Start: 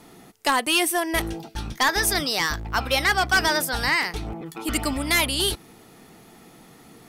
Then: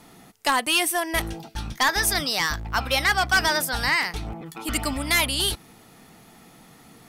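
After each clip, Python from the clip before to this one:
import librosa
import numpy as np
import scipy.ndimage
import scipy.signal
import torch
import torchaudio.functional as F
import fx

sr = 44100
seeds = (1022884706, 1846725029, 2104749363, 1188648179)

y = fx.peak_eq(x, sr, hz=380.0, db=-5.5, octaves=0.78)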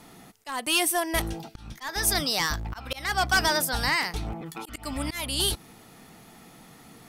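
y = fx.auto_swell(x, sr, attack_ms=294.0)
y = fx.dynamic_eq(y, sr, hz=2000.0, q=0.85, threshold_db=-34.0, ratio=4.0, max_db=-4)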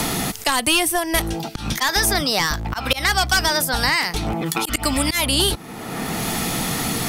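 y = fx.band_squash(x, sr, depth_pct=100)
y = y * 10.0 ** (7.0 / 20.0)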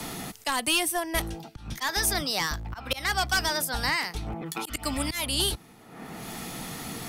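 y = fx.band_widen(x, sr, depth_pct=100)
y = y * 10.0 ** (-8.5 / 20.0)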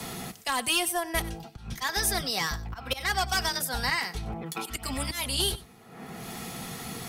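y = fx.notch_comb(x, sr, f0_hz=300.0)
y = y + 10.0 ** (-18.0 / 20.0) * np.pad(y, (int(95 * sr / 1000.0), 0))[:len(y)]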